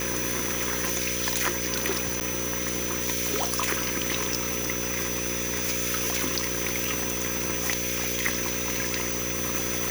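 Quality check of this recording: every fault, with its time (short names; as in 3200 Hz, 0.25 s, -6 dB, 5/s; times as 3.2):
buzz 60 Hz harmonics 9 -34 dBFS
tone 6000 Hz -33 dBFS
2.2–2.21 gap 9.1 ms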